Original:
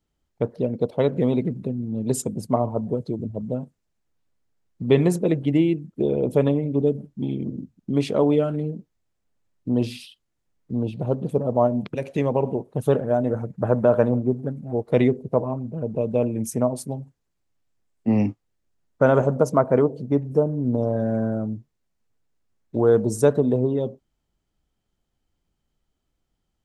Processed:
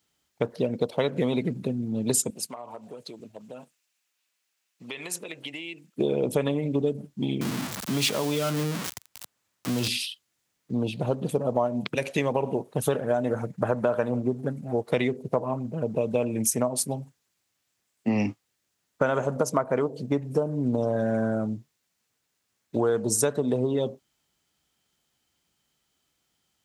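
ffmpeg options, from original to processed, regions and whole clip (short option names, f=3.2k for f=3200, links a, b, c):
-filter_complex "[0:a]asettb=1/sr,asplit=3[a][b][c];[a]atrim=end=2.304[d];[b]atrim=start=2.3:end=5.96,asetpts=PTS-STARTPTS,afade=t=in:d=0.004:c=qsin,afade=t=out:st=3.656:d=0.004:c=qsin,highpass=f=1.2k:p=1,equalizer=f=2.6k:t=o:w=0.34:g=5.5,acompressor=threshold=-36dB:ratio=12:attack=3.2:release=140:knee=1:detection=peak[e];[c]atrim=start=5.956[f];[d][e]acrossfade=d=0.004:c1=hsin:c2=qsin[g];[g][f]acrossfade=d=0.004:c1=qsin:c2=hsin,asettb=1/sr,asplit=3[h][i][j];[h]atrim=end=7.414[k];[i]atrim=start=7.41:end=9.88,asetpts=PTS-STARTPTS,afade=t=in:d=0.004:c=qsin,afade=t=out:st=2.466:d=0.004:c=qsin,aeval=exprs='val(0)+0.5*0.0266*sgn(val(0))':c=same,equalizer=f=1.1k:w=1.5:g=3.5,acrossover=split=140|3000[l][m][n];[m]acompressor=threshold=-25dB:ratio=6:attack=3.2:release=140:knee=2.83:detection=peak[o];[l][o][n]amix=inputs=3:normalize=0[p];[j]atrim=start=9.876[q];[k][p]acrossfade=d=0.004:c1=hsin:c2=qsin[r];[r][q]acrossfade=d=0.004:c1=qsin:c2=hsin,highpass=97,tiltshelf=f=1.1k:g=-7,acompressor=threshold=-26dB:ratio=6,volume=5.5dB"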